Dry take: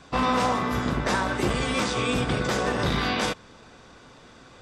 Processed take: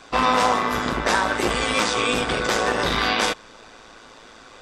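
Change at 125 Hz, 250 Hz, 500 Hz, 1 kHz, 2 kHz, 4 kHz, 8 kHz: -5.0, -0.5, +3.5, +5.5, +6.0, +6.0, +6.0 dB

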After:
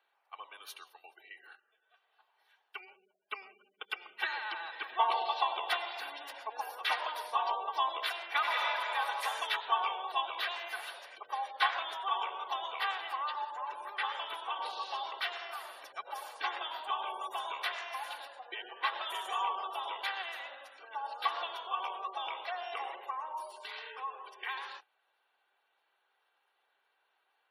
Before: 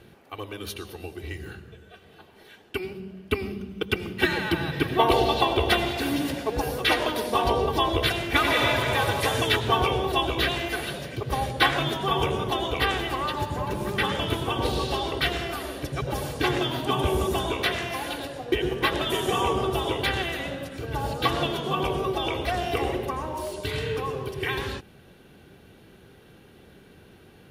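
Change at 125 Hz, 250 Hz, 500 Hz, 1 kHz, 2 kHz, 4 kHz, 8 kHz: under -40 dB, under -30 dB, -19.0 dB, -6.0 dB, -9.0 dB, -10.5 dB, -15.5 dB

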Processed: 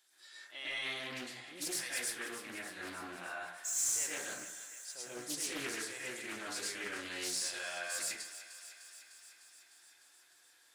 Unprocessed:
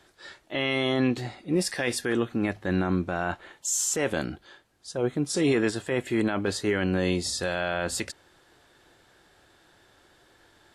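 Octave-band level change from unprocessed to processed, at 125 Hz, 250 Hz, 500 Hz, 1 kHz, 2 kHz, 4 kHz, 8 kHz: -28.5, -22.5, -20.0, -13.0, -8.5, -7.0, -4.0 dB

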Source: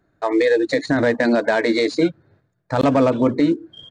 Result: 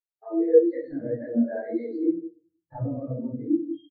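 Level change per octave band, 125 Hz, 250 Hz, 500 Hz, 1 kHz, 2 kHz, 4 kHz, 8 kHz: -7.5 dB, -7.0 dB, -6.5 dB, -20.0 dB, -25.0 dB, under -30 dB, under -40 dB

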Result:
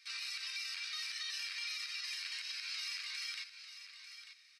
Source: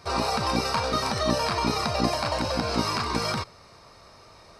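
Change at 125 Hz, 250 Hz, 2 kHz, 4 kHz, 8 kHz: under -40 dB, under -40 dB, -9.0 dB, -8.5 dB, -10.5 dB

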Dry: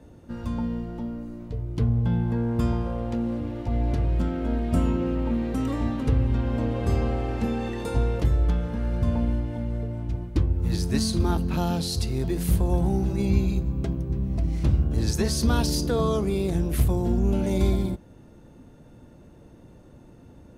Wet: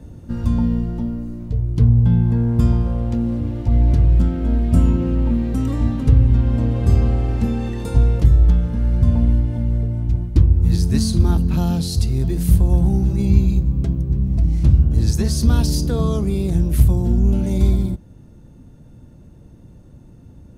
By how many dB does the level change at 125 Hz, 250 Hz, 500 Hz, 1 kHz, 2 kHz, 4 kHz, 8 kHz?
+9.5, +5.5, 0.0, -1.0, -1.0, +1.5, +3.0 dB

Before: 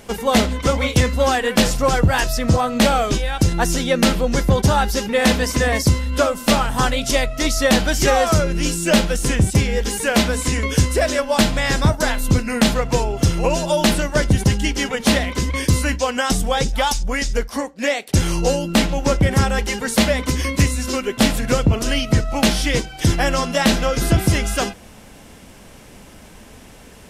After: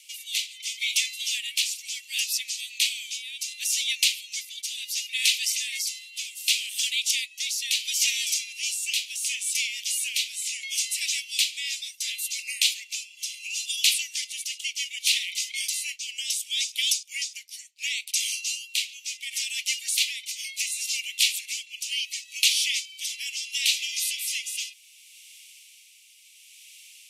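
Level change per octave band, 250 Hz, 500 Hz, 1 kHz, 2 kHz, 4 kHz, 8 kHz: under -40 dB, under -40 dB, under -40 dB, -8.0 dB, -0.5 dB, -0.5 dB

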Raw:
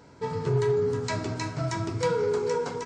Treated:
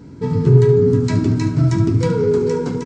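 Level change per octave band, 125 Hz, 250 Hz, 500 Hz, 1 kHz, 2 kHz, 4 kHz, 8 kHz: +16.5, +16.5, +9.0, +1.0, +2.0, +2.5, +2.5 dB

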